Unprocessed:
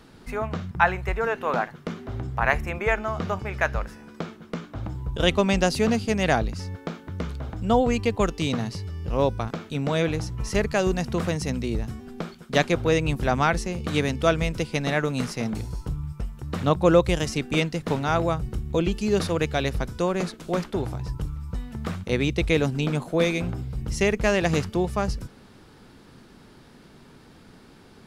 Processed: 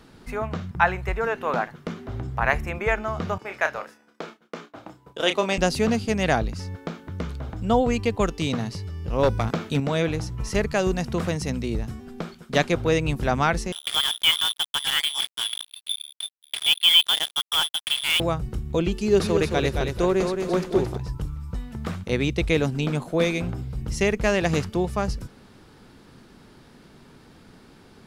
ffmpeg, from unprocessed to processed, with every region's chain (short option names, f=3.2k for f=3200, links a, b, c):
-filter_complex "[0:a]asettb=1/sr,asplit=3[a][b][c];[a]atrim=end=3.384[d];[b]atrim=start=3.38:end=5.58,asetpts=PTS-STARTPTS,afade=t=in:d=0.004:c=qsin,afade=t=out:st=2.196:d=0.004:c=qsin,highpass=350,agate=range=-33dB:threshold=-42dB:ratio=3:release=100:detection=peak,asplit=2[e][f];[f]adelay=31,volume=-8dB[g];[e][g]amix=inputs=2:normalize=0,atrim=end_sample=97020[h];[c]atrim=start=5.576[i];[d][h]acrossfade=d=0.004:c1=hsin:c2=qsin[j];[j][i]acrossfade=d=0.004:c1=qsin:c2=hsin,asettb=1/sr,asplit=3[k][l][m];[k]atrim=end=9.234[n];[l]atrim=start=9.23:end=9.8,asetpts=PTS-STARTPTS,afade=t=in:d=0.004:c=qsin,afade=t=out:st=0.566:d=0.004:c=qsin,highpass=f=44:w=0.5412,highpass=f=44:w=1.3066,acontrast=44,aeval=exprs='clip(val(0),-1,0.178)':c=same[o];[m]atrim=start=9.796[p];[n][o]acrossfade=d=0.004:c1=hsin:c2=qsin[q];[q][p]acrossfade=d=0.004:c1=qsin:c2=hsin,asettb=1/sr,asplit=3[r][s][t];[r]atrim=end=13.724[u];[s]atrim=start=13.72:end=18.2,asetpts=PTS-STARTPTS,afade=t=in:d=0.004:c=qsin,afade=t=out:st=4.476:d=0.004:c=qsin,lowpass=f=3.1k:t=q:w=0.5098,lowpass=f=3.1k:t=q:w=0.6013,lowpass=f=3.1k:t=q:w=0.9,lowpass=f=3.1k:t=q:w=2.563,afreqshift=-3600,acrusher=bits=3:mix=0:aa=0.5[v];[t]atrim=start=18.196[w];[u][v]acrossfade=d=0.004:c1=hsin:c2=qsin[x];[x][w]acrossfade=d=0.004:c1=qsin:c2=hsin,asettb=1/sr,asplit=3[y][z][aa];[y]atrim=end=18.924[ab];[z]atrim=start=18.92:end=20.97,asetpts=PTS-STARTPTS,afade=t=in:d=0.004:c=qsin,afade=t=out:st=2.046:d=0.004:c=qsin,equalizer=f=380:w=7:g=8.5,aecho=1:1:220|440|660|880:0.531|0.181|0.0614|0.0209,atrim=end_sample=90405[ac];[aa]atrim=start=20.966[ad];[ab][ac]acrossfade=d=0.004:c1=hsin:c2=qsin[ae];[ae][ad]acrossfade=d=0.004:c1=qsin:c2=hsin"